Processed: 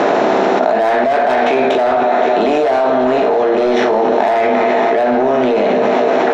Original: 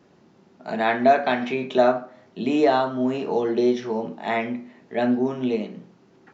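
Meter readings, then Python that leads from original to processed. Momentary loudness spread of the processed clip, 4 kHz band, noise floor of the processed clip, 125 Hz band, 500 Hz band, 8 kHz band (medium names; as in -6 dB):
0 LU, +9.0 dB, -14 dBFS, +4.0 dB, +11.5 dB, no reading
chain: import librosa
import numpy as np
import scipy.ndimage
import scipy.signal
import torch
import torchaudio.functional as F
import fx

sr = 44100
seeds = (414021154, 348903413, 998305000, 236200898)

p1 = fx.bin_compress(x, sr, power=0.6)
p2 = fx.low_shelf(p1, sr, hz=380.0, db=-9.5)
p3 = p2 + fx.echo_thinned(p2, sr, ms=257, feedback_pct=77, hz=170.0, wet_db=-15.0, dry=0)
p4 = 10.0 ** (-20.0 / 20.0) * np.tanh(p3 / 10.0 ** (-20.0 / 20.0))
p5 = fx.peak_eq(p4, sr, hz=650.0, db=11.0, octaves=2.6)
p6 = fx.hum_notches(p5, sr, base_hz=60, count=2)
p7 = fx.room_early_taps(p6, sr, ms=(15, 60), db=(-9.0, -12.0))
p8 = fx.env_flatten(p7, sr, amount_pct=100)
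y = p8 * librosa.db_to_amplitude(-3.5)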